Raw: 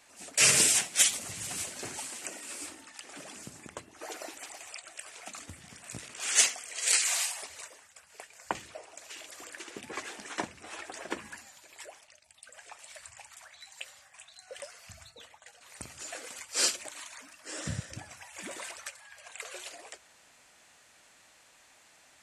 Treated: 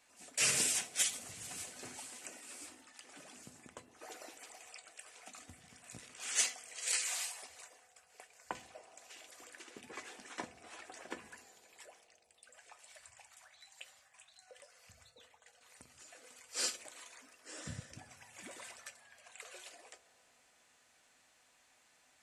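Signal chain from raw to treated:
0:14.44–0:16.44: downward compressor 2.5 to 1, threshold −48 dBFS, peak gain reduction 8 dB
tuned comb filter 250 Hz, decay 0.18 s, harmonics all, mix 60%
on a send: transistor ladder low-pass 900 Hz, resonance 50% + convolution reverb RT60 4.0 s, pre-delay 3 ms, DRR 16.5 dB
on the sum: level −3 dB

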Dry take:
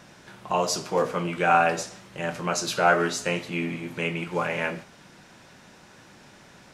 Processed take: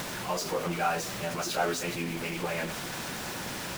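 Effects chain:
converter with a step at zero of −20 dBFS
mains-hum notches 50/100/150/200/250/300 Hz
on a send at −15 dB: inverse Chebyshev band-stop filter 290–9,300 Hz, stop band 50 dB + convolution reverb RT60 0.40 s, pre-delay 5 ms
on the sum: time stretch by phase vocoder 0.56×
level −7.5 dB

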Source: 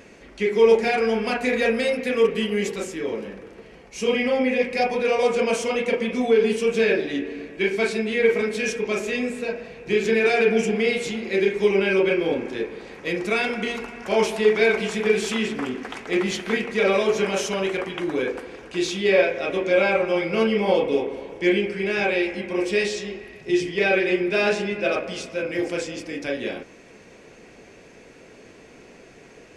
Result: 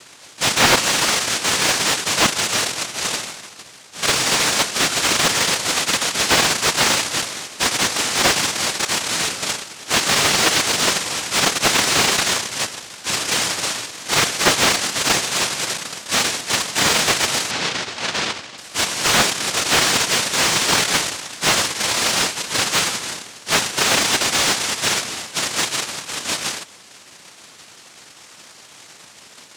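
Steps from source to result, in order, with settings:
cochlear-implant simulation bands 1
0:17.51–0:18.58: low-pass filter 4,700 Hz 12 dB per octave
slew-rate limiting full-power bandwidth 540 Hz
level +4 dB

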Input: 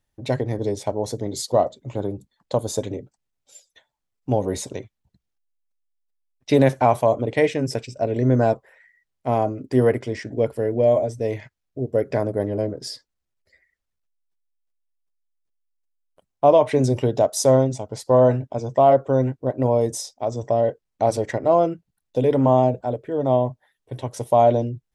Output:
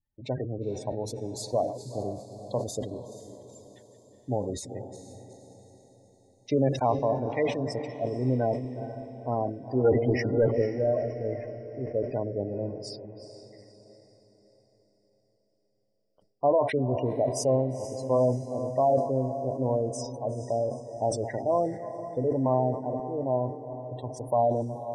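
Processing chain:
feedback delay that plays each chunk backwards 184 ms, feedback 62%, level −14 dB
0:09.84–0:10.62: leveller curve on the samples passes 3
gate on every frequency bin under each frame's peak −20 dB strong
feedback delay with all-pass diffusion 476 ms, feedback 48%, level −12.5 dB
level that may fall only so fast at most 96 dB per second
level −8.5 dB

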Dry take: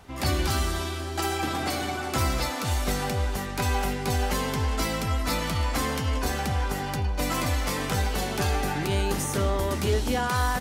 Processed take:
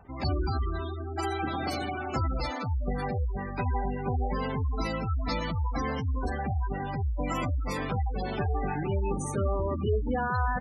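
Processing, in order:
gate on every frequency bin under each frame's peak −15 dB strong
level −2 dB

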